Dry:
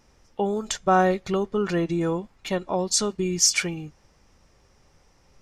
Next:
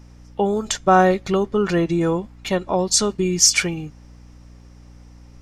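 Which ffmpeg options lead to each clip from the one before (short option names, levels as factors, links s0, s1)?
-af "aeval=exprs='val(0)+0.00398*(sin(2*PI*60*n/s)+sin(2*PI*2*60*n/s)/2+sin(2*PI*3*60*n/s)/3+sin(2*PI*4*60*n/s)/4+sin(2*PI*5*60*n/s)/5)':c=same,volume=1.78"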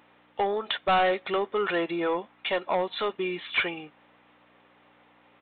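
-af "highpass=580,aresample=8000,asoftclip=type=tanh:threshold=0.1,aresample=44100,volume=1.19"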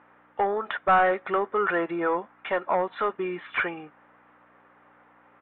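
-af "lowpass=f=1500:t=q:w=2"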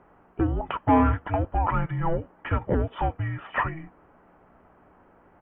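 -af "afreqshift=-480,volume=1.12"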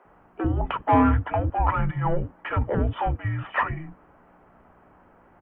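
-filter_complex "[0:a]aeval=exprs='0.355*(cos(1*acos(clip(val(0)/0.355,-1,1)))-cos(1*PI/2))+0.0112*(cos(2*acos(clip(val(0)/0.355,-1,1)))-cos(2*PI/2))+0.01*(cos(4*acos(clip(val(0)/0.355,-1,1)))-cos(4*PI/2))':c=same,acrossover=split=340[s0][s1];[s0]adelay=50[s2];[s2][s1]amix=inputs=2:normalize=0,volume=1.26"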